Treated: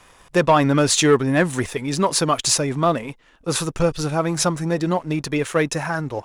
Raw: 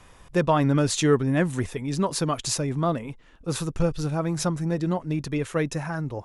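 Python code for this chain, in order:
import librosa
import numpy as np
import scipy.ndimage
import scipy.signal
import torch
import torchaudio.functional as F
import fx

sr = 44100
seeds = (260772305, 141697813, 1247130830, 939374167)

y = fx.low_shelf(x, sr, hz=280.0, db=-10.0)
y = fx.leveller(y, sr, passes=1)
y = y * 10.0 ** (5.5 / 20.0)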